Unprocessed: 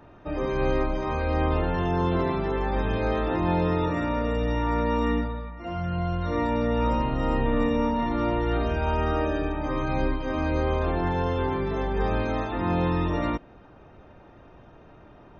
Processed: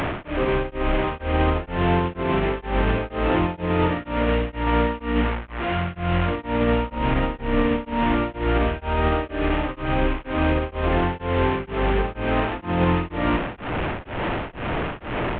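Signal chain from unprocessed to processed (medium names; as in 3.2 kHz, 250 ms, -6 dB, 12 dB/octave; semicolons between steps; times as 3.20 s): one-bit delta coder 16 kbps, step -25 dBFS; peak limiter -17.5 dBFS, peak gain reduction 6 dB; tremolo of two beating tones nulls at 2.1 Hz; trim +7 dB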